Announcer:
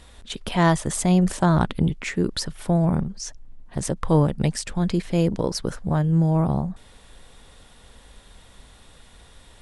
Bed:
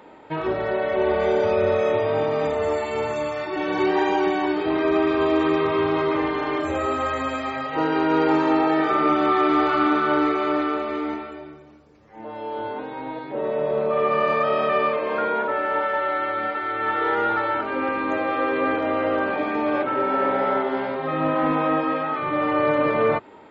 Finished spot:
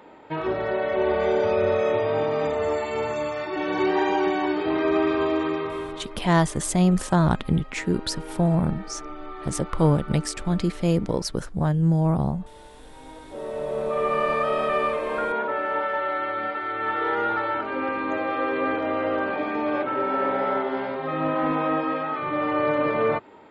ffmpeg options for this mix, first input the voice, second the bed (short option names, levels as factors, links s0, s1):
-filter_complex "[0:a]adelay=5700,volume=0.891[s0];[1:a]volume=5.62,afade=t=out:st=5.08:d=1:silence=0.133352,afade=t=in:st=12.82:d=1.3:silence=0.149624[s1];[s0][s1]amix=inputs=2:normalize=0"